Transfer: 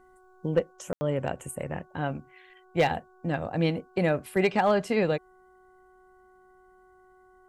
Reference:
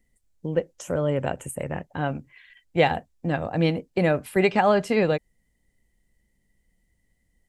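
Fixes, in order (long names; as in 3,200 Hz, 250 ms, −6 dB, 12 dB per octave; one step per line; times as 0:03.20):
clipped peaks rebuilt −14.5 dBFS
hum removal 370.5 Hz, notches 4
ambience match 0:00.93–0:01.01
level 0 dB, from 0:00.63 +3.5 dB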